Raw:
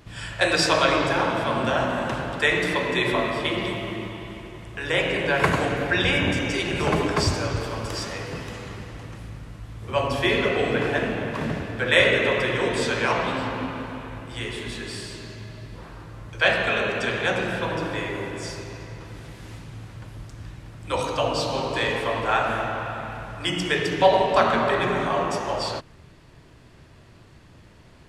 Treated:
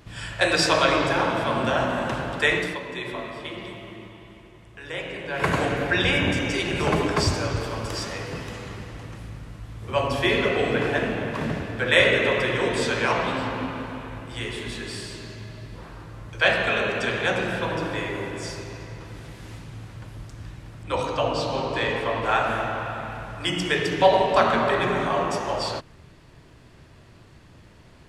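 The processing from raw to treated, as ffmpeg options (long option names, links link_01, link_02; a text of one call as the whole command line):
ffmpeg -i in.wav -filter_complex "[0:a]asettb=1/sr,asplit=3[link_01][link_02][link_03];[link_01]atrim=end=20.834[link_04];[link_02]atrim=start=20.83:end=22.24,asetpts=PTS-STARTPTS,afade=type=in:duration=0.004:curve=qsin,afade=type=out:start_time=1.406:duration=0.004:curve=qsin,lowpass=frequency=4000:poles=1[link_05];[link_03]atrim=start=22.236[link_06];[link_04][link_05]acrossfade=duration=0.004:curve1=hsin:curve2=qsin[link_07];[link_07][link_06]acrossfade=duration=0.004:curve1=qsin:curve2=hsin,asplit=3[link_08][link_09][link_10];[link_08]atrim=end=2.79,asetpts=PTS-STARTPTS,afade=type=out:start_time=2.52:duration=0.27:silence=0.334965[link_11];[link_09]atrim=start=2.79:end=5.3,asetpts=PTS-STARTPTS,volume=-9.5dB[link_12];[link_10]atrim=start=5.3,asetpts=PTS-STARTPTS,afade=type=in:duration=0.27:silence=0.334965[link_13];[link_11][link_12][link_13]concat=n=3:v=0:a=1" out.wav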